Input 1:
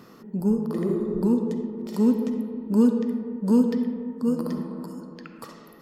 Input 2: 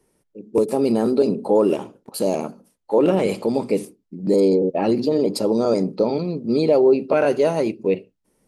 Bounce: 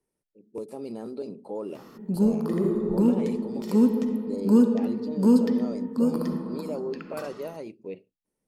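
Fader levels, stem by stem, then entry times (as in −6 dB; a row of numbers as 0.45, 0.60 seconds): +0.5, −17.5 decibels; 1.75, 0.00 seconds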